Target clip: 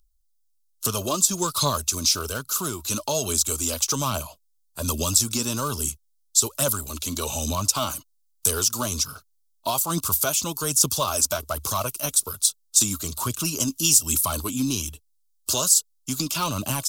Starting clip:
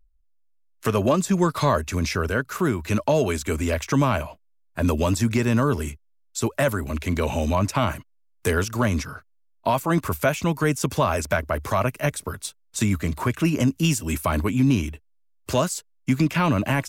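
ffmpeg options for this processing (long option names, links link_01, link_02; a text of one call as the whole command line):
ffmpeg -i in.wav -af "highshelf=frequency=1700:width_type=q:width=3:gain=-8.5,aphaser=in_gain=1:out_gain=1:delay=4.1:decay=0.4:speed=1.2:type=triangular,aexciter=amount=14.6:drive=8.6:freq=2800,volume=-8.5dB" out.wav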